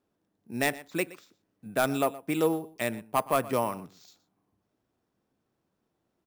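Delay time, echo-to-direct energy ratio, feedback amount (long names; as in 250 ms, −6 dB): 120 ms, −18.5 dB, repeats not evenly spaced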